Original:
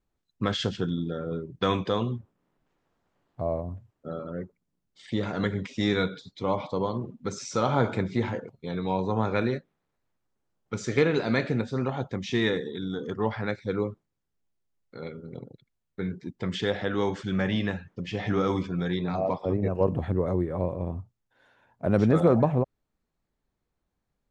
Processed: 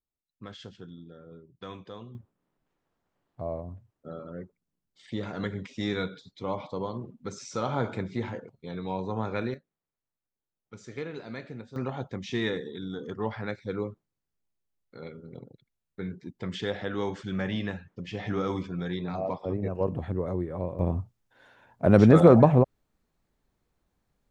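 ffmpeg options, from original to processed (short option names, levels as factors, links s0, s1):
-af "asetnsamples=n=441:p=0,asendcmd='2.15 volume volume -5dB;9.54 volume volume -14dB;11.76 volume volume -4dB;20.79 volume volume 5dB',volume=0.15"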